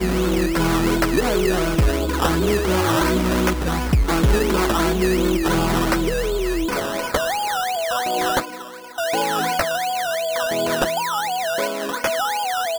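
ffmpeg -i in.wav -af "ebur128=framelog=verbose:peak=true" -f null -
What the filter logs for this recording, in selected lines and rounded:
Integrated loudness:
  I:         -20.5 LUFS
  Threshold: -30.5 LUFS
Loudness range:
  LRA:         3.1 LU
  Threshold: -40.5 LUFS
  LRA low:   -22.2 LUFS
  LRA high:  -19.1 LUFS
True peak:
  Peak:       -6.9 dBFS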